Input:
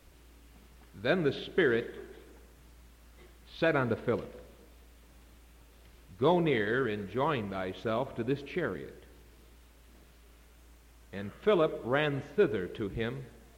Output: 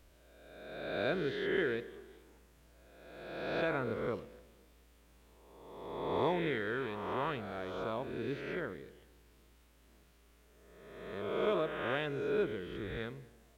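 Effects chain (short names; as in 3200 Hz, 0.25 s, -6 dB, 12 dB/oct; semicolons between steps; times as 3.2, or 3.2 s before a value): spectral swells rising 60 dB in 1.46 s; gain -9 dB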